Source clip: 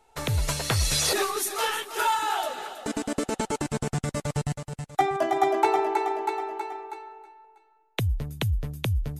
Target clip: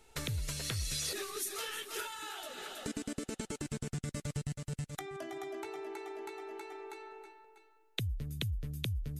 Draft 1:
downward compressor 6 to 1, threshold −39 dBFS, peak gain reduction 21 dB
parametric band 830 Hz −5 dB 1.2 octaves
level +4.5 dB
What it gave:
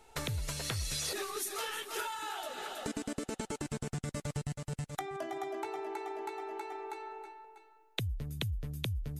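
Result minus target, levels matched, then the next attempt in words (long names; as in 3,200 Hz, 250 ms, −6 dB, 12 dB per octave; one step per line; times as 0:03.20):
1,000 Hz band +5.5 dB
downward compressor 6 to 1, threshold −39 dBFS, peak gain reduction 21 dB
parametric band 830 Hz −13 dB 1.2 octaves
level +4.5 dB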